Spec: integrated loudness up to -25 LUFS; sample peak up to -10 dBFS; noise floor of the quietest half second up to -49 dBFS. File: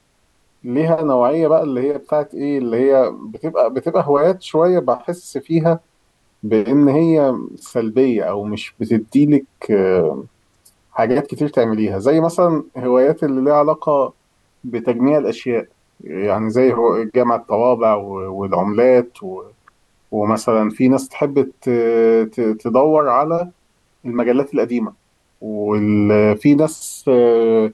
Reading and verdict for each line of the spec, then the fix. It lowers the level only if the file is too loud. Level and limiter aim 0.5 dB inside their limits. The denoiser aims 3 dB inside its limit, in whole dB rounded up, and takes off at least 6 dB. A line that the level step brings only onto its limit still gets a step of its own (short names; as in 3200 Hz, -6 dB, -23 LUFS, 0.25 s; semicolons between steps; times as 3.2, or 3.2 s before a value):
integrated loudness -16.5 LUFS: fail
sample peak -4.0 dBFS: fail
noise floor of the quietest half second -60 dBFS: OK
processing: gain -9 dB